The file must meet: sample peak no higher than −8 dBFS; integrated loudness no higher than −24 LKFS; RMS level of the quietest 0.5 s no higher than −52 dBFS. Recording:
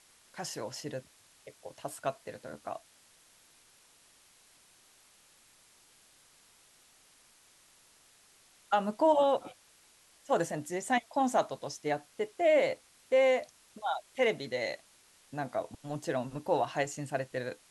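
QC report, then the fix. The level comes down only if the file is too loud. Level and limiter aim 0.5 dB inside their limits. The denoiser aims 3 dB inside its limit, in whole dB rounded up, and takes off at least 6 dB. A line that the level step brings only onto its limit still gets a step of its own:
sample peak −16.0 dBFS: in spec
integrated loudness −32.0 LKFS: in spec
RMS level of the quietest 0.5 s −63 dBFS: in spec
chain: no processing needed

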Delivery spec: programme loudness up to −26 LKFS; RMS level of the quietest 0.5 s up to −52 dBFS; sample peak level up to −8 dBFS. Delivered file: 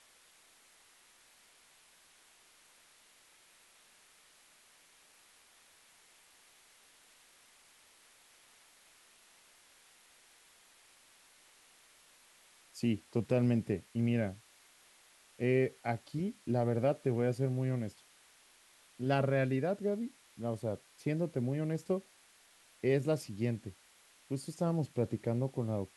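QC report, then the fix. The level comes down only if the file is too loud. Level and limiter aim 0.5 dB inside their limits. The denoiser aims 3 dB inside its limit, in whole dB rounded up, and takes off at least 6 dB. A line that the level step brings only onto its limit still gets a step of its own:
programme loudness −34.5 LKFS: in spec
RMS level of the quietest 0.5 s −64 dBFS: in spec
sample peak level −17.5 dBFS: in spec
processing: no processing needed

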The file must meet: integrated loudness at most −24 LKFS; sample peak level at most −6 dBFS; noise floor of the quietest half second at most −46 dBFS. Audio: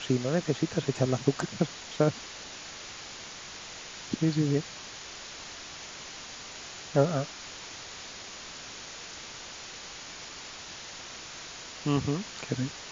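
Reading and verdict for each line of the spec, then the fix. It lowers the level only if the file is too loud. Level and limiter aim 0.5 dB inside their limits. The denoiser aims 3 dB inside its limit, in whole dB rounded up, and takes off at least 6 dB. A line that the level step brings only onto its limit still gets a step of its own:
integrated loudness −33.5 LKFS: in spec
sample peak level −9.0 dBFS: in spec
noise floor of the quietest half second −43 dBFS: out of spec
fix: broadband denoise 6 dB, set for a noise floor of −43 dBFS

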